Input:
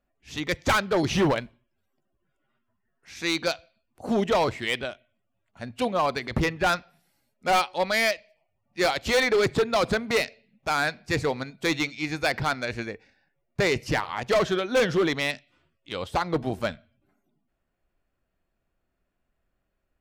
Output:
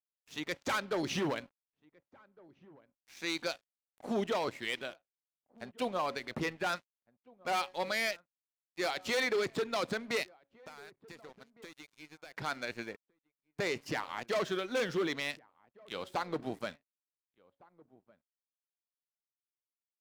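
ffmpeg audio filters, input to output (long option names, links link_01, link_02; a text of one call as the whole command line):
ffmpeg -i in.wav -filter_complex "[0:a]highpass=190,bandreject=frequency=277:width_type=h:width=4,bandreject=frequency=554:width_type=h:width=4,adynamicequalizer=threshold=0.0141:dfrequency=710:dqfactor=1.3:tfrequency=710:tqfactor=1.3:attack=5:release=100:ratio=0.375:range=2:mode=cutabove:tftype=bell,alimiter=limit=-17dB:level=0:latency=1:release=45,asettb=1/sr,asplit=3[link_01][link_02][link_03];[link_01]atrim=end=10.234[link_04];[link_02]atrim=start=10.23:end=12.37,asetpts=PTS-STARTPTS,afade=type=in:duration=0.004:curve=qsin,afade=type=out:start_time=2.136:duration=0.004:curve=qsin,acompressor=threshold=-42dB:ratio=4[link_05];[link_03]atrim=start=12.366[link_06];[link_04][link_05]acrossfade=duration=0.004:curve1=hsin:curve2=qsin[link_07];[link_07][link_06]acrossfade=duration=0.004:curve1=qsin:curve2=hsin,aeval=exprs='sgn(val(0))*max(abs(val(0))-0.00422,0)':channel_layout=same,asplit=2[link_08][link_09];[link_09]adelay=1458,volume=-24dB,highshelf=frequency=4000:gain=-32.8[link_10];[link_08][link_10]amix=inputs=2:normalize=0,volume=-6.5dB" out.wav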